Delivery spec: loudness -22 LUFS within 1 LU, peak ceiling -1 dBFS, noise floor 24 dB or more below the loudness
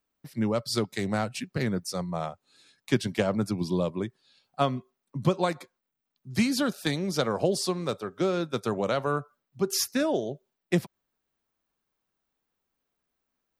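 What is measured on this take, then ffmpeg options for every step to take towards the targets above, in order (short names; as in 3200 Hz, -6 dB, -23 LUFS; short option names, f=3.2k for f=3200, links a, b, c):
loudness -29.0 LUFS; peak -10.0 dBFS; loudness target -22.0 LUFS
-> -af "volume=7dB"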